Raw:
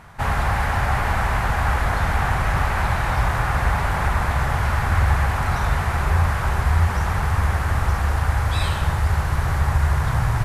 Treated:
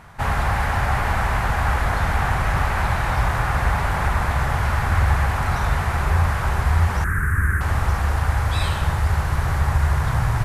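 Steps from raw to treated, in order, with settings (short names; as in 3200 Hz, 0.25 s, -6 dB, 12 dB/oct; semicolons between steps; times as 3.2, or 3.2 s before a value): 7.04–7.61 EQ curve 360 Hz 0 dB, 740 Hz -24 dB, 1600 Hz +10 dB, 3200 Hz -24 dB, 4700 Hz -22 dB, 9200 Hz +3 dB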